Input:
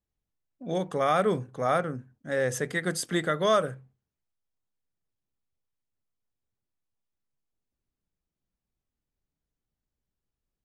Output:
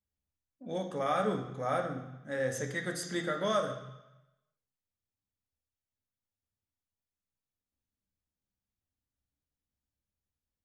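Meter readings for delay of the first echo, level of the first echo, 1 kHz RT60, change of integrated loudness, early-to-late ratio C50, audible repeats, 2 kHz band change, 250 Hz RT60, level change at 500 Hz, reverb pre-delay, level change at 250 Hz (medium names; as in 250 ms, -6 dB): no echo, no echo, 1.0 s, -6.0 dB, 7.5 dB, no echo, -6.0 dB, 0.90 s, -6.0 dB, 3 ms, -5.0 dB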